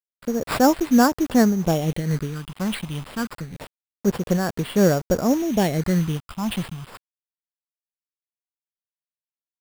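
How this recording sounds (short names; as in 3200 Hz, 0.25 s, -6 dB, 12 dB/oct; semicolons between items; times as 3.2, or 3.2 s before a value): a quantiser's noise floor 6-bit, dither none; phasing stages 6, 0.27 Hz, lowest notch 450–4900 Hz; aliases and images of a low sample rate 6200 Hz, jitter 0%; noise-modulated level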